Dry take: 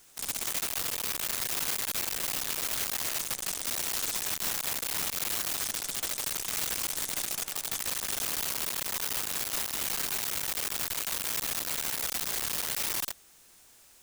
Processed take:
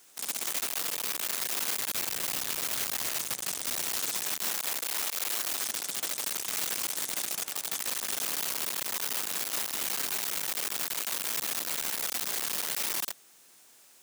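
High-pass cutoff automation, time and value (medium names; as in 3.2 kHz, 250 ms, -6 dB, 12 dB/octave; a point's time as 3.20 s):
1.58 s 210 Hz
2.07 s 99 Hz
3.73 s 99 Hz
5.12 s 400 Hz
5.83 s 180 Hz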